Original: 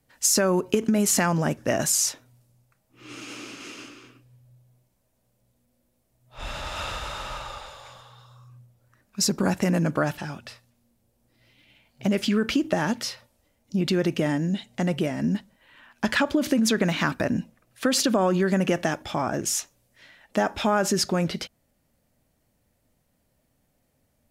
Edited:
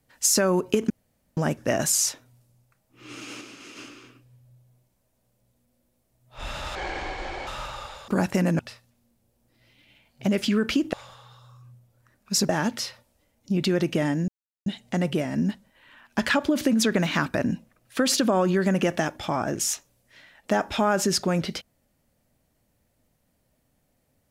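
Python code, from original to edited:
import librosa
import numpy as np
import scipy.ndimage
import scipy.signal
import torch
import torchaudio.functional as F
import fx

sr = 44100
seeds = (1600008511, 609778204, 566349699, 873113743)

y = fx.edit(x, sr, fx.room_tone_fill(start_s=0.9, length_s=0.47),
    fx.clip_gain(start_s=3.41, length_s=0.35, db=-4.5),
    fx.speed_span(start_s=6.75, length_s=0.44, speed=0.61),
    fx.move(start_s=7.8, length_s=1.56, to_s=12.73),
    fx.cut(start_s=9.87, length_s=0.52),
    fx.insert_silence(at_s=14.52, length_s=0.38), tone=tone)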